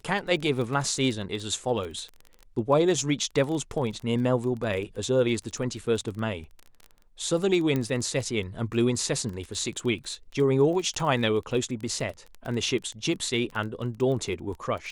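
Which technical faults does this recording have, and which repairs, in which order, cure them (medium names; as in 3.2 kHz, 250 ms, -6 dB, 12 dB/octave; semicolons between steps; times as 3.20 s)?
crackle 21 per s -32 dBFS
7.76 s: pop -15 dBFS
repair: de-click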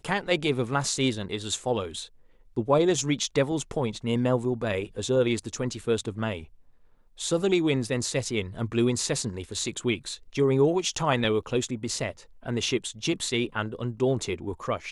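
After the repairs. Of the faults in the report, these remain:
7.76 s: pop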